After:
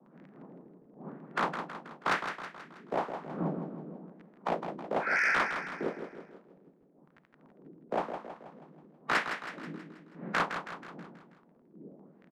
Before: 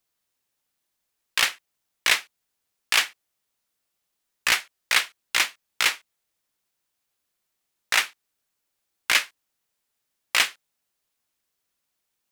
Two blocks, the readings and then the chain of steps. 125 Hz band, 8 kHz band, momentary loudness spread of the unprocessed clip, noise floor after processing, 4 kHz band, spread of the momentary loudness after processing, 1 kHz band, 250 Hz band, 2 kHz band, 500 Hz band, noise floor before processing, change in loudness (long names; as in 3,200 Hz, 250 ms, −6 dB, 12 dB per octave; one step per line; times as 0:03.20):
can't be measured, −24.0 dB, 7 LU, −63 dBFS, −20.5 dB, 22 LU, +1.0 dB, +14.0 dB, −8.0 dB, +8.0 dB, −80 dBFS, −10.5 dB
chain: ceiling on every frequency bin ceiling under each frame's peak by 28 dB
wind on the microphone 230 Hz −45 dBFS
healed spectral selection 0:05.03–0:05.37, 1,300–2,600 Hz
Butterworth high-pass 150 Hz 72 dB per octave
surface crackle 14 per second −38 dBFS
auto-filter low-pass sine 1 Hz 340–1,900 Hz
soft clipping −21 dBFS, distortion −12 dB
repeating echo 161 ms, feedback 51%, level −8 dB